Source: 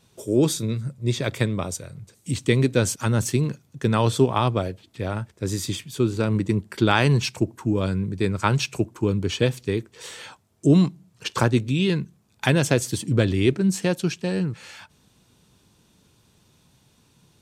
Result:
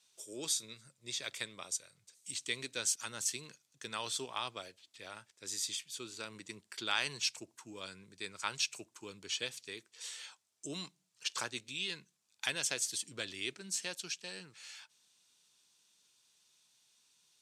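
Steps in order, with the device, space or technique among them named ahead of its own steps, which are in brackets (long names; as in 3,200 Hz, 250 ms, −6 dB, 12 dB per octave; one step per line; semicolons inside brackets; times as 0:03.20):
piezo pickup straight into a mixer (low-pass filter 6,800 Hz 12 dB per octave; first difference)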